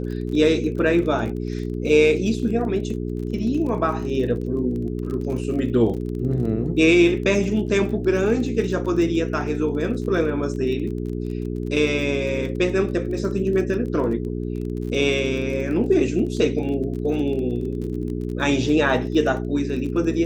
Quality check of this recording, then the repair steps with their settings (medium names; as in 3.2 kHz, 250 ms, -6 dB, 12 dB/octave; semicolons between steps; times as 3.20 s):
crackle 30 per s -31 dBFS
hum 60 Hz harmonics 7 -27 dBFS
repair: de-click; de-hum 60 Hz, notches 7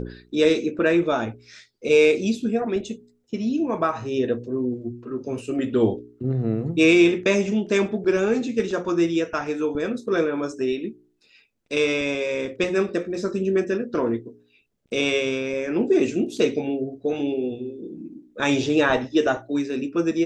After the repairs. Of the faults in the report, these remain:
nothing left